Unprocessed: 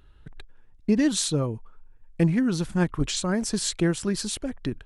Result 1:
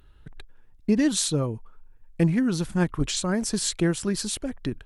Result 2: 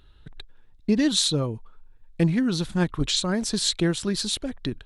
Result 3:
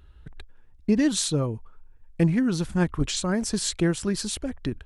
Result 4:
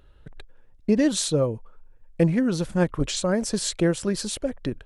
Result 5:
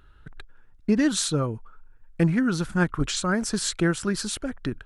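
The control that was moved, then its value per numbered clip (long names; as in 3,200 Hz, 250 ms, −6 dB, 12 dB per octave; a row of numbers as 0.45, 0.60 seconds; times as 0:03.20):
parametric band, centre frequency: 15,000, 3,800, 65, 540, 1,400 Hertz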